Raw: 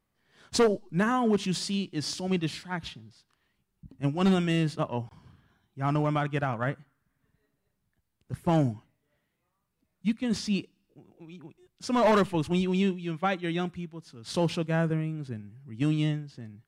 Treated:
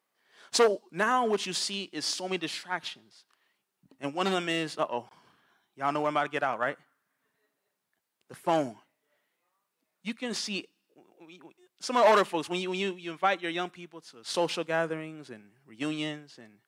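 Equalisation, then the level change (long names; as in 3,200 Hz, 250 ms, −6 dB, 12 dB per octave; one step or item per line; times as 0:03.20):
high-pass filter 450 Hz 12 dB per octave
+3.0 dB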